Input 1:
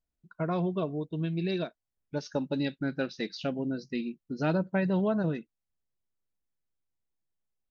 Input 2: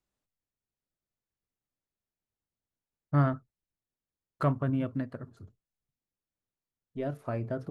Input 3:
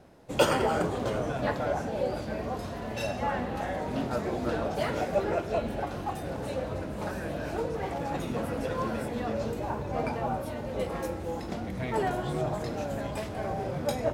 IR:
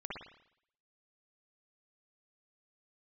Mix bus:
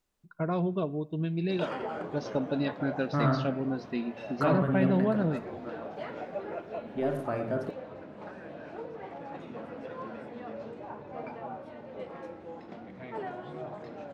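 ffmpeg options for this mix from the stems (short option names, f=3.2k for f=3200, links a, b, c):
-filter_complex "[0:a]highshelf=f=3.6k:g=-6.5,volume=0dB,asplit=2[a][b];[b]volume=-20dB[c];[1:a]volume=3dB,asplit=2[d][e];[e]volume=-3.5dB[f];[2:a]lowpass=2.9k,adelay=1200,volume=-8.5dB[g];[d][g]amix=inputs=2:normalize=0,highpass=180,alimiter=level_in=1.5dB:limit=-24dB:level=0:latency=1:release=18,volume=-1.5dB,volume=0dB[h];[3:a]atrim=start_sample=2205[i];[c][f]amix=inputs=2:normalize=0[j];[j][i]afir=irnorm=-1:irlink=0[k];[a][h][k]amix=inputs=3:normalize=0"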